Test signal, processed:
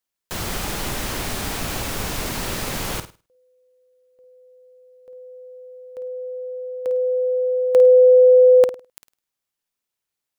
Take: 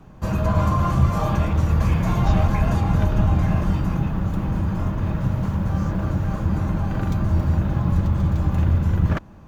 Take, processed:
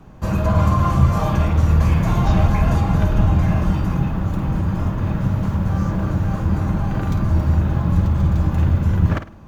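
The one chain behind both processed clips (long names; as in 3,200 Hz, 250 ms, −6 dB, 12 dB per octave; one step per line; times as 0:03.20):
flutter between parallel walls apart 8.9 metres, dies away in 0.31 s
level +2 dB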